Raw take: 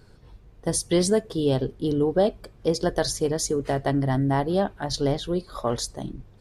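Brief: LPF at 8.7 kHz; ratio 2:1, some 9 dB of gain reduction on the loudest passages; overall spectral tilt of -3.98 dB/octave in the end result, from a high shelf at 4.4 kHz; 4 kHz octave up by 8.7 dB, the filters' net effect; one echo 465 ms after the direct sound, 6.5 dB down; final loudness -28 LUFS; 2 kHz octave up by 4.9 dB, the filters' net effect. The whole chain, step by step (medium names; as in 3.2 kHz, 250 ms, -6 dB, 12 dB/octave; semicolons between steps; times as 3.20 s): low-pass 8.7 kHz; peaking EQ 2 kHz +3.5 dB; peaking EQ 4 kHz +6.5 dB; treble shelf 4.4 kHz +6.5 dB; compression 2:1, threshold -33 dBFS; delay 465 ms -6.5 dB; trim +2.5 dB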